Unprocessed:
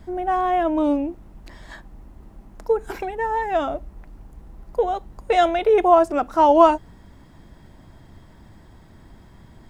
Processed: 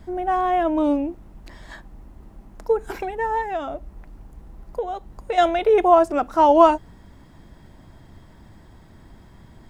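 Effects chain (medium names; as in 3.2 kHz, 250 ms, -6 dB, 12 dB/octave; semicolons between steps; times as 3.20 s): 3.41–5.38 s: compression 2:1, threshold -28 dBFS, peak gain reduction 7.5 dB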